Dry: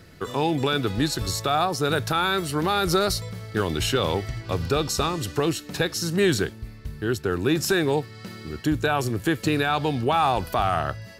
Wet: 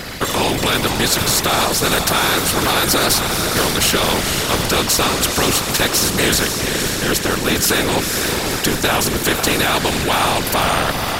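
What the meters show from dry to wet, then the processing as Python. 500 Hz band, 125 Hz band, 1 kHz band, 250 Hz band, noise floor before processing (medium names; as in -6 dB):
+5.0 dB, +3.5 dB, +6.0 dB, +5.0 dB, -44 dBFS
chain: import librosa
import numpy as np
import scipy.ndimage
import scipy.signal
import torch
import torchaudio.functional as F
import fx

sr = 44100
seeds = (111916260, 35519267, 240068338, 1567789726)

p1 = fx.echo_diffused(x, sr, ms=498, feedback_pct=49, wet_db=-11.5)
p2 = fx.whisperise(p1, sr, seeds[0])
p3 = fx.rider(p2, sr, range_db=3, speed_s=0.5)
p4 = p2 + F.gain(torch.from_numpy(p3), 0.0).numpy()
y = fx.spectral_comp(p4, sr, ratio=2.0)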